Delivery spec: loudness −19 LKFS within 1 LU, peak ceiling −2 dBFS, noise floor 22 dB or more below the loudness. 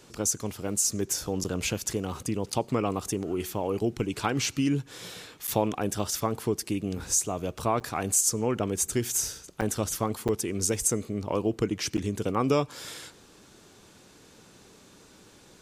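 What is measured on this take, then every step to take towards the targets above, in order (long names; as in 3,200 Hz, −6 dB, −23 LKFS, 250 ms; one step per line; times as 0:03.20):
number of dropouts 7; longest dropout 7.9 ms; integrated loudness −28.5 LKFS; sample peak −10.0 dBFS; target loudness −19.0 LKFS
→ repair the gap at 0:01.44/0:02.52/0:05.47/0:07.80/0:09.61/0:10.28/0:11.97, 7.9 ms
level +9.5 dB
brickwall limiter −2 dBFS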